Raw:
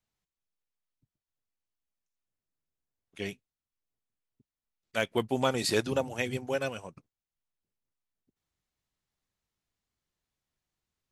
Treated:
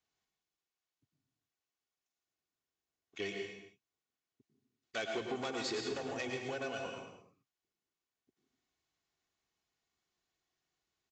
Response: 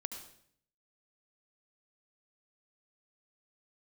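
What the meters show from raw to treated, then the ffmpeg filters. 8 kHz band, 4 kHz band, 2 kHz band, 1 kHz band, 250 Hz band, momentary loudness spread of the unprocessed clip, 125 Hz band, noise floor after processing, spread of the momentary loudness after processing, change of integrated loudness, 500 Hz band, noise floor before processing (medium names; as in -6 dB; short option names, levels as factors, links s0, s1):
-8.5 dB, -6.0 dB, -6.0 dB, -7.5 dB, -8.5 dB, 12 LU, -13.5 dB, under -85 dBFS, 12 LU, -8.5 dB, -8.0 dB, under -85 dBFS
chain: -filter_complex "[0:a]aresample=16000,asoftclip=type=tanh:threshold=0.0398,aresample=44100[s0];[1:a]atrim=start_sample=2205,afade=t=out:st=0.36:d=0.01,atrim=end_sample=16317,asetrate=30870,aresample=44100[s1];[s0][s1]afir=irnorm=-1:irlink=0,acompressor=threshold=0.0158:ratio=6,highpass=f=230:p=1,aecho=1:1:2.7:0.39,volume=1.19"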